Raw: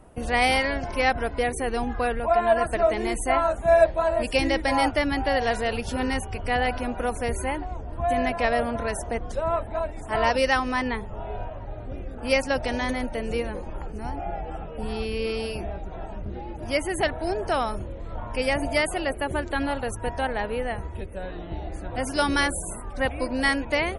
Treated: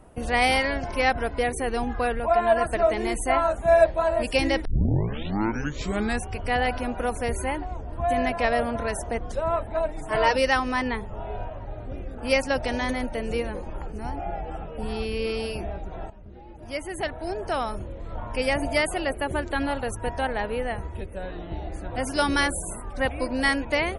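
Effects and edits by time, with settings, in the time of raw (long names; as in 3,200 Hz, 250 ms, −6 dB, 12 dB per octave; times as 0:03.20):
0:04.65: tape start 1.66 s
0:09.75–0:10.34: comb filter 6.4 ms
0:16.10–0:18.18: fade in, from −14 dB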